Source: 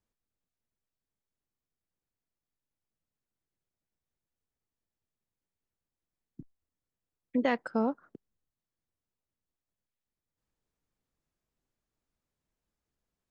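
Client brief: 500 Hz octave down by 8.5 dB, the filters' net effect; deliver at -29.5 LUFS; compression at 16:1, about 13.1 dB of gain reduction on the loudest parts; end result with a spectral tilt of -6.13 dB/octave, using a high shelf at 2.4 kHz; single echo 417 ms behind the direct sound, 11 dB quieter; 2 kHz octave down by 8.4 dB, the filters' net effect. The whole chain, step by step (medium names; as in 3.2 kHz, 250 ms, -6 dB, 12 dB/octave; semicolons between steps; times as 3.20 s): peaking EQ 500 Hz -9 dB; peaking EQ 2 kHz -7 dB; treble shelf 2.4 kHz -5.5 dB; compression 16:1, threshold -40 dBFS; delay 417 ms -11 dB; trim +19.5 dB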